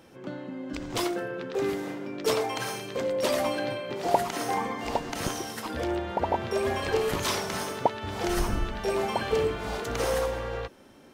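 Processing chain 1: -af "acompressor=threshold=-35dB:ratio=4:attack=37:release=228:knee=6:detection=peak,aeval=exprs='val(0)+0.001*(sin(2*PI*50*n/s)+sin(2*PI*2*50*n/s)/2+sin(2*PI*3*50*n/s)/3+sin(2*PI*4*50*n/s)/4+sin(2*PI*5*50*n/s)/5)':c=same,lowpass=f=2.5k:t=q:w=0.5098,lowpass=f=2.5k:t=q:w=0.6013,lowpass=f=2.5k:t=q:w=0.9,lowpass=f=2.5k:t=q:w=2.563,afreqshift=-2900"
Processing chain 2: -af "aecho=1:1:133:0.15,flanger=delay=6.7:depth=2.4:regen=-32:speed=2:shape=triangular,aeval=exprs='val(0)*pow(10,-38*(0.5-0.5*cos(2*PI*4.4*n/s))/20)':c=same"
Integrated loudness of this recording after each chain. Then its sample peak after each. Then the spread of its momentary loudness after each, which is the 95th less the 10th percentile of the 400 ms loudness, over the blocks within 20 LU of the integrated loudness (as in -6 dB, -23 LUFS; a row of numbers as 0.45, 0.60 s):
-33.5, -40.0 LUFS; -13.5, -18.0 dBFS; 3, 10 LU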